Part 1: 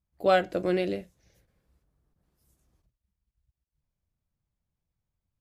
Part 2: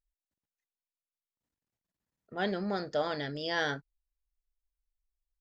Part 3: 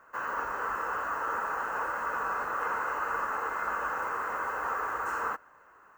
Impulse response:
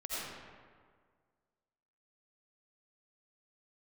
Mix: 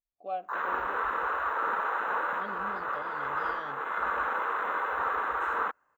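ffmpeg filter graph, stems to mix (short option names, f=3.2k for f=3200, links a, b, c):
-filter_complex "[0:a]asplit=3[a][b][c];[a]bandpass=f=730:t=q:w=8,volume=0dB[d];[b]bandpass=f=1.09k:t=q:w=8,volume=-6dB[e];[c]bandpass=f=2.44k:t=q:w=8,volume=-9dB[f];[d][e][f]amix=inputs=3:normalize=0,equalizer=f=220:w=0.98:g=9.5,volume=-8dB[g];[1:a]lowpass=2.8k,volume=-12.5dB,asplit=2[h][i];[2:a]afwtdn=0.0126,adelay=350,volume=2.5dB[j];[i]apad=whole_len=278840[k];[j][k]sidechaincompress=threshold=-45dB:ratio=8:attack=26:release=660[l];[g][h][l]amix=inputs=3:normalize=0"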